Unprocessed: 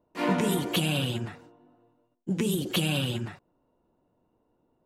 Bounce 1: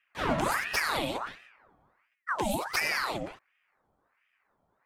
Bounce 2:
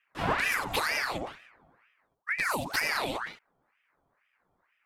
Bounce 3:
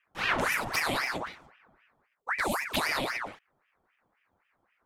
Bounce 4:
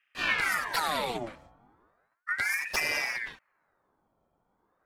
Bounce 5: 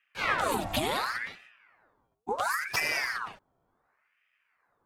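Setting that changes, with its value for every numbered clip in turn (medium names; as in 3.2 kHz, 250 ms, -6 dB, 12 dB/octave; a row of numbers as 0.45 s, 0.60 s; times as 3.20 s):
ring modulator with a swept carrier, at: 1.4 Hz, 2.1 Hz, 3.8 Hz, 0.35 Hz, 0.7 Hz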